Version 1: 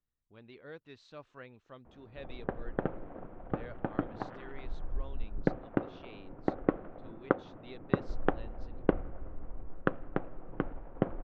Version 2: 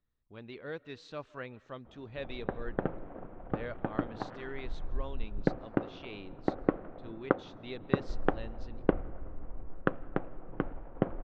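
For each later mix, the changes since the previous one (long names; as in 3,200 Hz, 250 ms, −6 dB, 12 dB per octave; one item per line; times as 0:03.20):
speech +6.0 dB
reverb: on, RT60 0.95 s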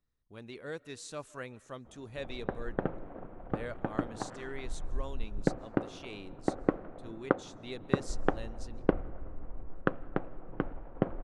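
master: remove low-pass filter 4,100 Hz 24 dB per octave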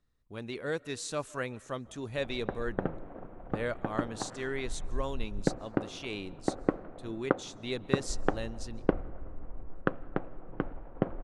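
speech +7.0 dB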